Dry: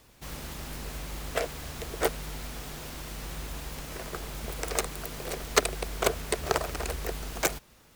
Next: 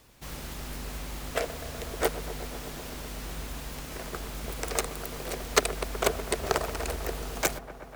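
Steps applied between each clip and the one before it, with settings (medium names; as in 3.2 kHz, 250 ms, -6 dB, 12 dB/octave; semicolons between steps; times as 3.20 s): feedback echo behind a low-pass 124 ms, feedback 84%, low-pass 1.5 kHz, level -13.5 dB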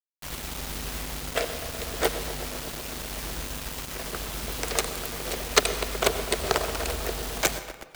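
dynamic bell 3.6 kHz, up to +5 dB, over -48 dBFS, Q 1.1; word length cut 6-bit, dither none; on a send at -12.5 dB: reverberation RT60 1.3 s, pre-delay 83 ms; on the sum: trim +1.5 dB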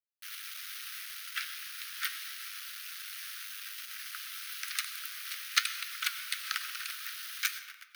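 steep high-pass 1.3 kHz 72 dB/octave; peaking EQ 7.5 kHz -13 dB 0.28 oct; flange 1.2 Hz, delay 7 ms, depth 4.4 ms, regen +76%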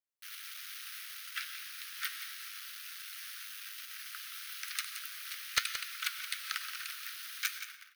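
one-sided wavefolder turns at -13.5 dBFS; on a send: delay 174 ms -10.5 dB; on the sum: trim -3 dB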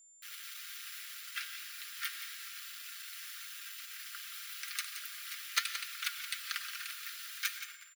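high-pass 710 Hz; comb 5 ms, depth 58%; whistle 7.2 kHz -56 dBFS; trim -2 dB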